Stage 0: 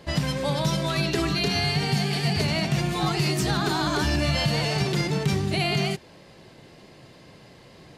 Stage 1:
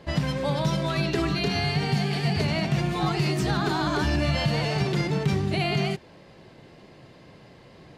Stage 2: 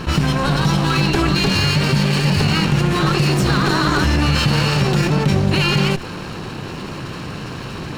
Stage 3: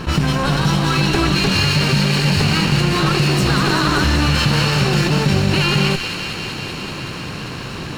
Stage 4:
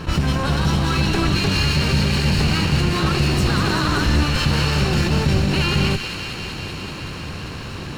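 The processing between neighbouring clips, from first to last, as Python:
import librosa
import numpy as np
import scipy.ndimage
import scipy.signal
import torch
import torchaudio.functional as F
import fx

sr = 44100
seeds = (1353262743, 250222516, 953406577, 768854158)

y1 = fx.high_shelf(x, sr, hz=4700.0, db=-10.0)
y2 = fx.lower_of_two(y1, sr, delay_ms=0.72)
y2 = fx.env_flatten(y2, sr, amount_pct=50)
y2 = y2 * librosa.db_to_amplitude(7.0)
y3 = fx.echo_wet_highpass(y2, sr, ms=194, feedback_pct=82, hz=1800.0, wet_db=-6)
y4 = fx.octave_divider(y3, sr, octaves=1, level_db=-1.0)
y4 = y4 * librosa.db_to_amplitude(-4.0)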